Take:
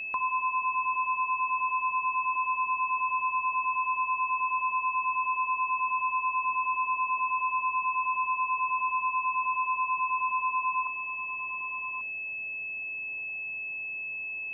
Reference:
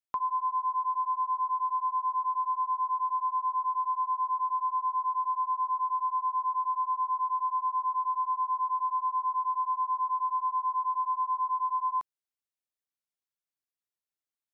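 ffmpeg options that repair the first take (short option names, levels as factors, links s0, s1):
-af "bandreject=f=2600:w=30,afwtdn=0.0035,asetnsamples=n=441:p=0,asendcmd='10.87 volume volume 11.5dB',volume=1"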